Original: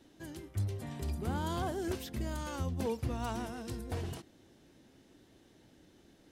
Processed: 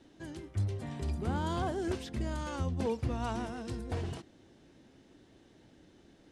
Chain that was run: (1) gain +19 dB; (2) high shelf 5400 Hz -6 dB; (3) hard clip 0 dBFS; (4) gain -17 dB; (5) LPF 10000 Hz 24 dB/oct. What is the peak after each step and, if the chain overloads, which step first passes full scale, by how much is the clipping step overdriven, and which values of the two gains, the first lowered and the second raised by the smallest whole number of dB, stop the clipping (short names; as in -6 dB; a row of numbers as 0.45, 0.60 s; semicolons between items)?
-4.5, -5.0, -5.0, -22.0, -22.0 dBFS; no overload